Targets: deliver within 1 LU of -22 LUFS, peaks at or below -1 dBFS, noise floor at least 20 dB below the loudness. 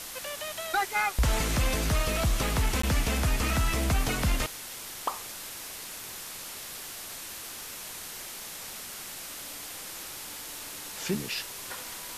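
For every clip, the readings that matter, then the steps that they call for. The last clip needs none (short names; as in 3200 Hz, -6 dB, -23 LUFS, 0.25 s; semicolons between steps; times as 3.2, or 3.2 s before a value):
dropouts 1; longest dropout 14 ms; noise floor -41 dBFS; noise floor target -52 dBFS; loudness -31.5 LUFS; peak -16.0 dBFS; loudness target -22.0 LUFS
-> interpolate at 2.82, 14 ms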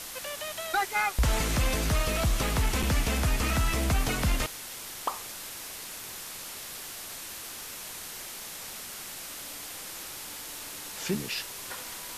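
dropouts 0; noise floor -41 dBFS; noise floor target -52 dBFS
-> noise print and reduce 11 dB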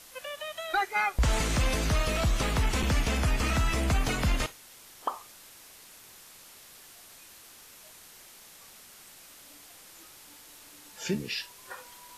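noise floor -52 dBFS; loudness -29.0 LUFS; peak -16.5 dBFS; loudness target -22.0 LUFS
-> gain +7 dB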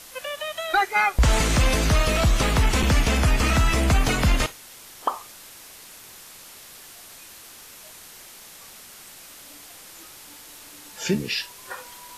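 loudness -22.0 LUFS; peak -9.5 dBFS; noise floor -45 dBFS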